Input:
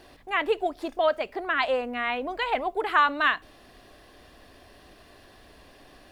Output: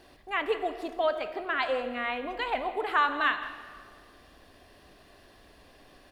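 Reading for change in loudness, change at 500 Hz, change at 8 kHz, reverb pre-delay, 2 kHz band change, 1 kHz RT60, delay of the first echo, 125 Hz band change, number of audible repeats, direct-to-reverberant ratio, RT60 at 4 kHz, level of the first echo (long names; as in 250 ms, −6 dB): −3.5 dB, −3.5 dB, can't be measured, 17 ms, −3.5 dB, 1.8 s, 165 ms, can't be measured, 1, 8.5 dB, 1.5 s, −16.5 dB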